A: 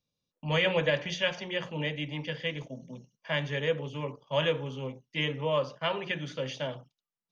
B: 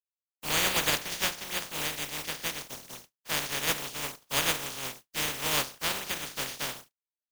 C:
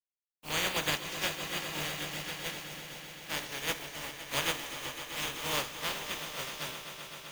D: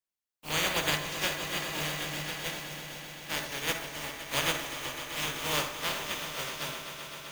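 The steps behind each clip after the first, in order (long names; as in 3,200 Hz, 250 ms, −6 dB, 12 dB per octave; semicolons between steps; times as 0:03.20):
compressing power law on the bin magnitudes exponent 0.16; downward expander −48 dBFS
on a send: echo that builds up and dies away 128 ms, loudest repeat 5, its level −11 dB; on the sum: every bin expanded away from the loudest bin 1.5 to 1; level −4.5 dB
convolution reverb RT60 0.50 s, pre-delay 47 ms, DRR 7.5 dB; level +2 dB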